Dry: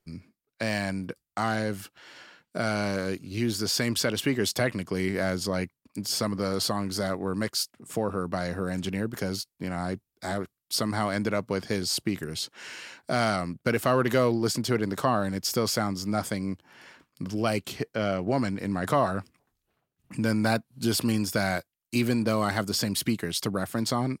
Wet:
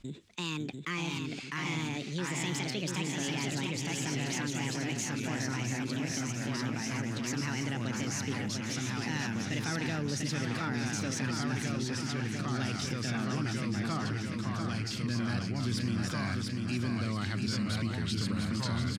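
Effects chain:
gliding playback speed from 160% → 95%
guitar amp tone stack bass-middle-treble 6-0-2
in parallel at +0.5 dB: brickwall limiter −40.5 dBFS, peak gain reduction 11 dB
on the sum: delay with pitch and tempo change per echo 547 ms, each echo −2 semitones, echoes 2
high-frequency loss of the air 92 metres
on a send: repeating echo 693 ms, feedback 47%, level −6 dB
on the sum: envelope flattener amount 50%
level +5 dB

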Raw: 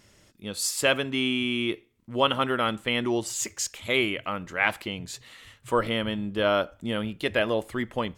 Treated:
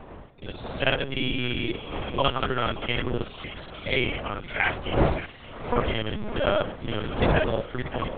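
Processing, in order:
reversed piece by piece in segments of 43 ms
wind on the microphone 590 Hz −32 dBFS
hum removal 89.55 Hz, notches 8
on a send: feedback echo with a high-pass in the loop 575 ms, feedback 63%, high-pass 1,000 Hz, level −13 dB
on the sum: linear-prediction vocoder at 8 kHz pitch kept

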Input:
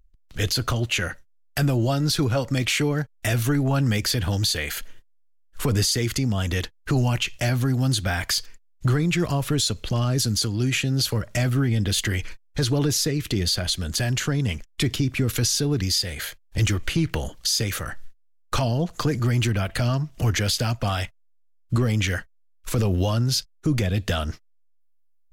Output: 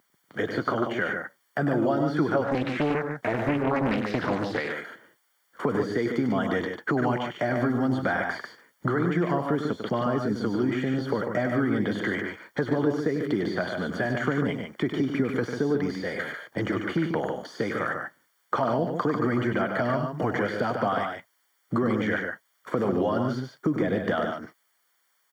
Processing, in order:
one scale factor per block 7 bits
de-essing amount 70%
Bessel high-pass filter 280 Hz, order 4
downward compressor 4 to 1, threshold −31 dBFS, peak gain reduction 9 dB
background noise violet −54 dBFS
Savitzky-Golay smoothing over 41 samples
loudspeakers that aren't time-aligned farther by 34 metres −8 dB, 50 metres −6 dB
0:02.44–0:04.76: highs frequency-modulated by the lows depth 0.74 ms
level +8.5 dB

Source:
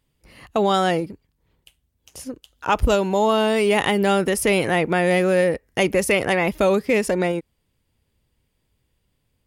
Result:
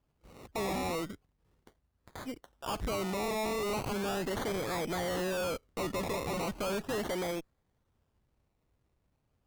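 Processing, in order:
sample-and-hold swept by an LFO 22×, swing 60% 0.37 Hz
tube saturation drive 27 dB, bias 0.35
level −4.5 dB

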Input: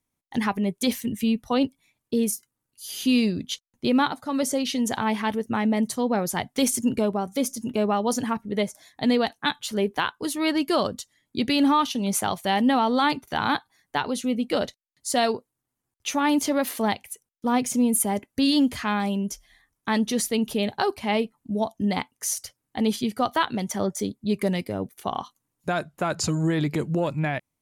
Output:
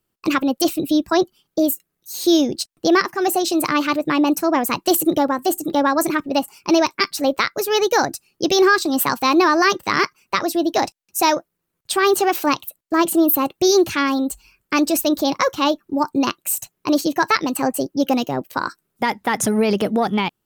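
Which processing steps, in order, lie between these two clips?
wrong playback speed 33 rpm record played at 45 rpm
level +6 dB

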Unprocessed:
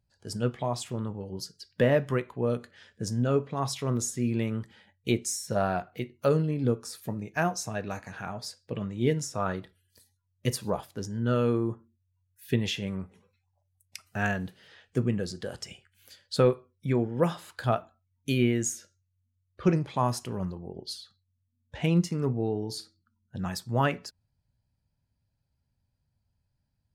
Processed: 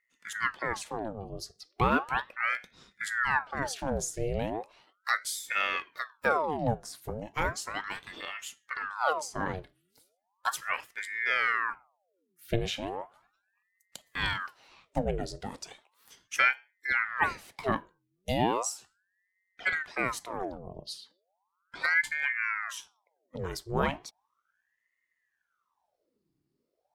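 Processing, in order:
0:19.64–0:20.30: parametric band 290 Hz −5.5 dB 1.8 octaves
ring modulator whose carrier an LFO sweeps 1,100 Hz, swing 80%, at 0.36 Hz

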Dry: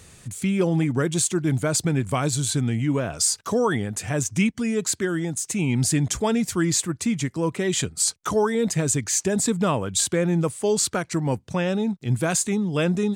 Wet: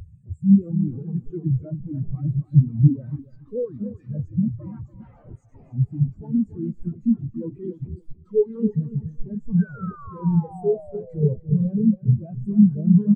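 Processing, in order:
one-sided soft clipper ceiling −18 dBFS
de-essing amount 90%
brickwall limiter −21 dBFS, peak gain reduction 8.5 dB
leveller curve on the samples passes 3
0:04.48–0:05.73: frequency shifter −120 Hz
sine wavefolder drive 17 dB, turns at −14 dBFS
0:09.59–0:11.36: sound drawn into the spectrogram fall 410–1,600 Hz −23 dBFS
repeating echo 284 ms, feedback 59%, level −4 dB
on a send at −15 dB: convolution reverb RT60 0.85 s, pre-delay 35 ms
on the sum: every bin expanded away from the loudest bin 4 to 1

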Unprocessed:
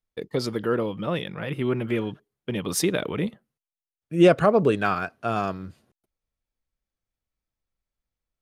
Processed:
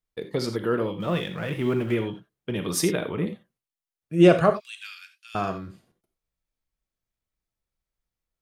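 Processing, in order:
0:01.00–0:01.95: mu-law and A-law mismatch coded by mu
0:02.83–0:03.26: parametric band 5,200 Hz −2.5 dB → −10.5 dB 2.2 octaves
0:04.50–0:05.35: inverse Chebyshev high-pass filter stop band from 600 Hz, stop band 70 dB
reverb whose tail is shaped and stops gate 110 ms flat, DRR 6.5 dB
level −1 dB

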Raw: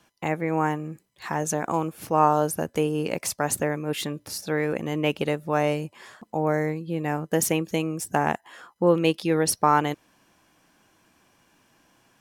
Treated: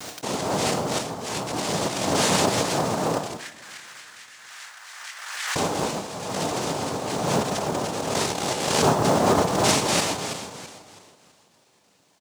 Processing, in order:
feedback delay that plays each chunk backwards 164 ms, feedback 59%, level −0.5 dB
de-essing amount 45%
low-pass filter 5,200 Hz
comb filter 2.4 ms
cochlear-implant simulation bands 2
log-companded quantiser 6 bits
0:03.37–0:05.56: four-pole ladder high-pass 1,500 Hz, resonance 55%
convolution reverb, pre-delay 3 ms, DRR 9.5 dB
background raised ahead of every attack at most 38 dB per second
level −5.5 dB

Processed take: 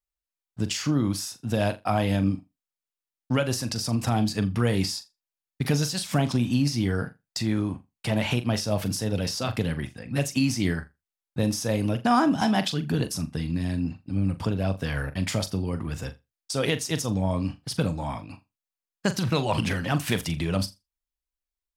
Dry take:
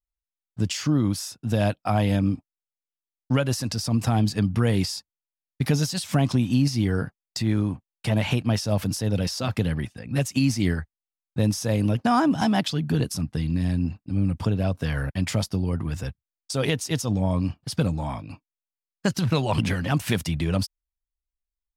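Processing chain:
low-shelf EQ 190 Hz −5 dB
on a send: flutter between parallel walls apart 7.1 metres, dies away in 0.21 s

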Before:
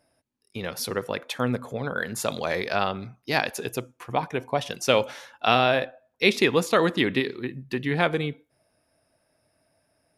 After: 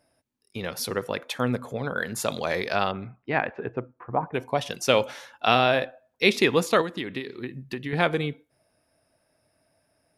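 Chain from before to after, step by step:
0:02.91–0:04.33: low-pass filter 3,000 Hz → 1,300 Hz 24 dB per octave
0:06.81–0:07.93: downward compressor 6 to 1, threshold −29 dBFS, peak gain reduction 11 dB

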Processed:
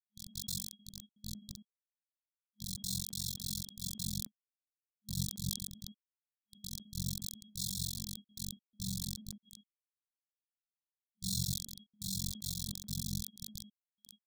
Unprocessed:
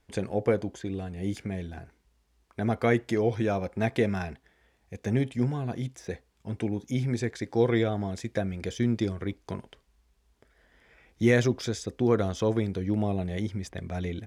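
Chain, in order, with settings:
samples sorted by size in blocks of 32 samples
Butterworth low-pass 9,100 Hz 72 dB per octave
low-pass that shuts in the quiet parts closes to 610 Hz, open at −24.5 dBFS
parametric band 1,800 Hz −7 dB 0.23 octaves
reverse bouncing-ball delay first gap 30 ms, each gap 1.4×, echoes 5
harmonic and percussive parts rebalanced percussive −10 dB
high-shelf EQ 6,100 Hz +10 dB
amplitude modulation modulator 45 Hz, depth 95%
flanger 0.16 Hz, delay 6.2 ms, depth 8.9 ms, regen −87%
bit reduction 5 bits
brick-wall band-stop 210–3,300 Hz
level that may fall only so fast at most 93 dB per second
level −4.5 dB

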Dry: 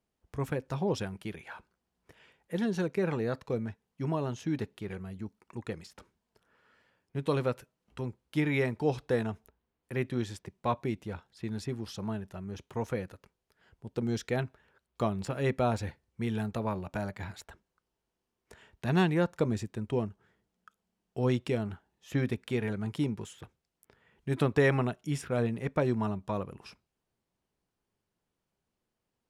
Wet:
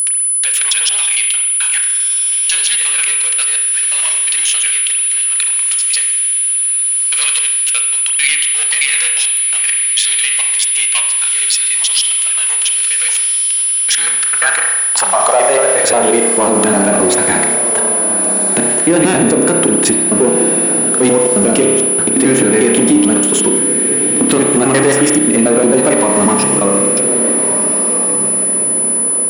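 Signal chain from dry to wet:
slices reordered back to front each 89 ms, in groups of 4
low-shelf EQ 470 Hz −5.5 dB
in parallel at +0.5 dB: downward compressor, threshold −38 dBFS, peak gain reduction 14 dB
on the sum: leveller curve on the samples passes 3
high-pass filter sweep 2,900 Hz → 280 Hz, 0:13.48–0:16.54
on a send: feedback delay with all-pass diffusion 1,461 ms, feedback 44%, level −12.5 dB
on the sum: spring reverb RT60 1.1 s, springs 30 ms, chirp 50 ms, DRR 3 dB
steady tone 10,000 Hz −23 dBFS
boost into a limiter +12.5 dB
level −1 dB

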